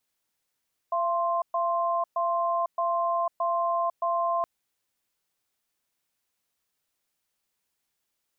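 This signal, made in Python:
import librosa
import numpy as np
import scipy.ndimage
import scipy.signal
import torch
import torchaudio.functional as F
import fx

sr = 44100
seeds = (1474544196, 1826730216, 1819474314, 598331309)

y = fx.cadence(sr, length_s=3.52, low_hz=681.0, high_hz=1050.0, on_s=0.5, off_s=0.12, level_db=-26.0)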